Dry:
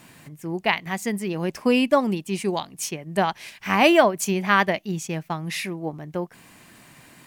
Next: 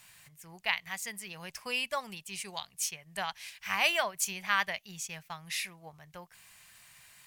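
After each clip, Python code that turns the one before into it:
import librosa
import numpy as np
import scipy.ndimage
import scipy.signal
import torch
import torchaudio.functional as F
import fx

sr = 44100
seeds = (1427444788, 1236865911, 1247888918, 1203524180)

y = fx.tone_stack(x, sr, knobs='10-0-10')
y = y * 10.0 ** (-2.5 / 20.0)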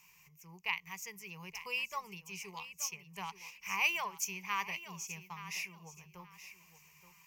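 y = fx.ripple_eq(x, sr, per_octave=0.78, db=16)
y = fx.echo_feedback(y, sr, ms=875, feedback_pct=24, wet_db=-13)
y = y * 10.0 ** (-9.0 / 20.0)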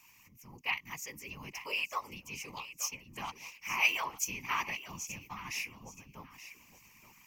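y = fx.whisperise(x, sr, seeds[0])
y = y * 10.0 ** (2.0 / 20.0)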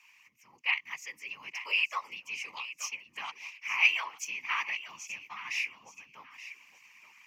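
y = fx.rider(x, sr, range_db=5, speed_s=2.0)
y = fx.bandpass_q(y, sr, hz=2200.0, q=1.1)
y = y * 10.0 ** (4.5 / 20.0)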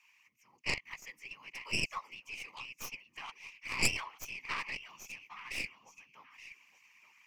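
y = fx.tracing_dist(x, sr, depth_ms=0.2)
y = y * 10.0 ** (-6.0 / 20.0)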